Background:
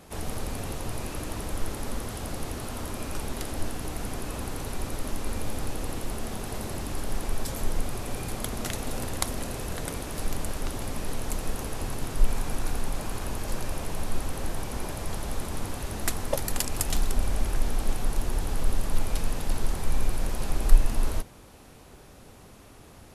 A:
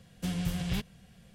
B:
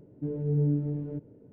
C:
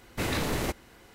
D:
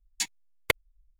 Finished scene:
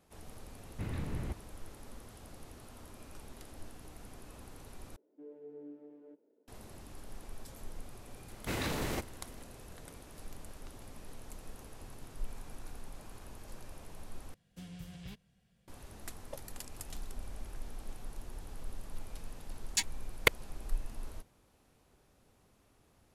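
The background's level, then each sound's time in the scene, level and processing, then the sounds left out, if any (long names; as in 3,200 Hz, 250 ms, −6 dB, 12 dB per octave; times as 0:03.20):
background −17.5 dB
0:00.61: mix in C −17 dB + bass and treble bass +14 dB, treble −13 dB
0:04.96: overwrite with B −11 dB + Bessel high-pass filter 450 Hz, order 8
0:08.29: mix in C −6 dB
0:14.34: overwrite with A −15.5 dB
0:19.57: mix in D −1 dB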